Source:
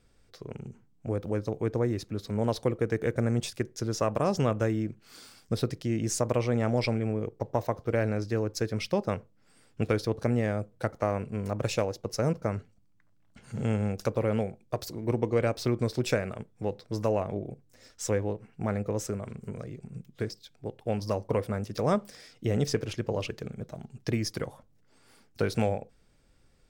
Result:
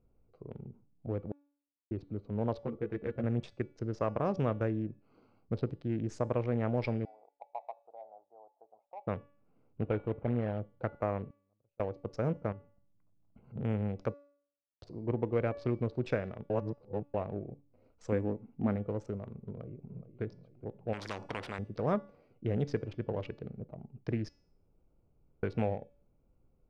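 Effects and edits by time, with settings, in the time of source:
1.32–1.91 mute
2.62–3.24 ensemble effect
7.05–9.07 Butterworth band-pass 780 Hz, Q 3.9
9.81–10.59 CVSD 16 kbps
11.29–11.8 flipped gate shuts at -35 dBFS, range -42 dB
12.52–13.56 compressor 4:1, threshold -41 dBFS
14.14–14.82 mute
16.5–17.14 reverse
18.12–18.76 bell 250 Hz +13.5 dB 0.46 oct
19.41–20.22 echo throw 0.42 s, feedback 60%, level -12 dB
20.93–21.59 spectral compressor 4:1
24.29–25.43 room tone
whole clip: Wiener smoothing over 25 samples; LPF 2600 Hz 12 dB/oct; de-hum 286.1 Hz, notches 32; gain -4.5 dB

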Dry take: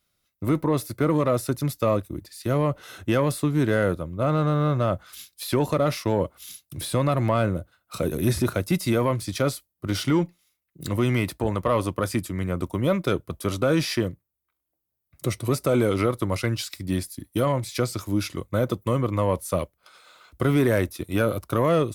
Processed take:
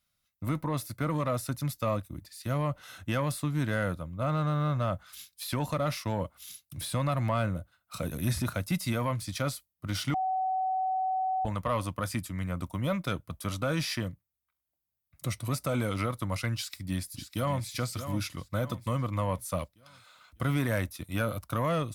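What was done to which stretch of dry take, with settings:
10.14–11.45 bleep 754 Hz -20 dBFS
16.54–17.66 echo throw 0.6 s, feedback 45%, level -9.5 dB
whole clip: bell 390 Hz -14 dB 0.66 oct; gain -4.5 dB

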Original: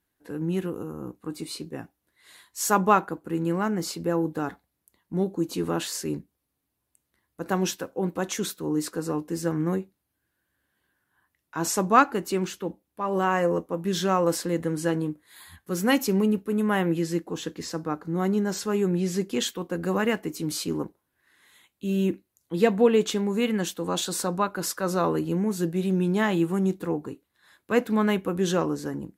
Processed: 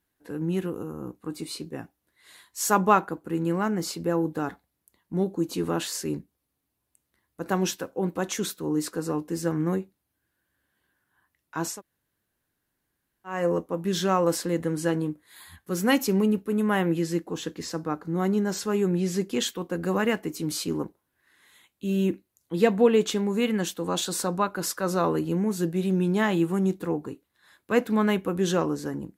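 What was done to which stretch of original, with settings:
11.7–13.36 room tone, crossfade 0.24 s

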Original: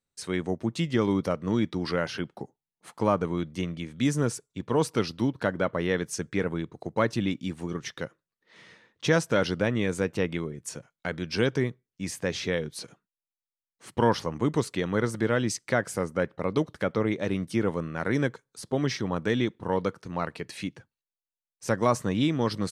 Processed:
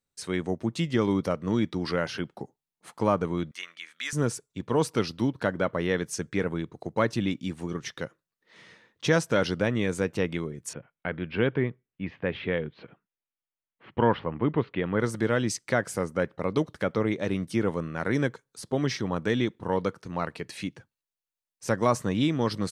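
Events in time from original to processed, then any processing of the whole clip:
3.51–4.13 resonant high-pass 1500 Hz, resonance Q 1.6
10.73–15 steep low-pass 3100 Hz

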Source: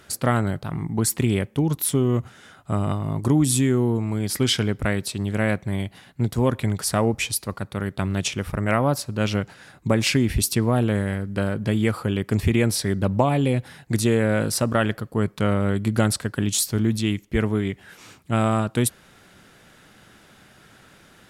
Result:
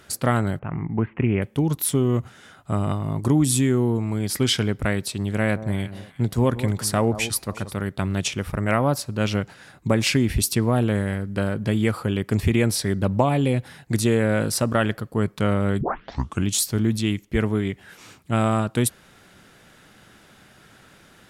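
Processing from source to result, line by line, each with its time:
0.59–1.42 steep low-pass 2800 Hz 72 dB/oct
5.38–7.79 echo with dull and thin repeats by turns 0.179 s, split 1100 Hz, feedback 51%, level -12 dB
15.81 tape start 0.67 s

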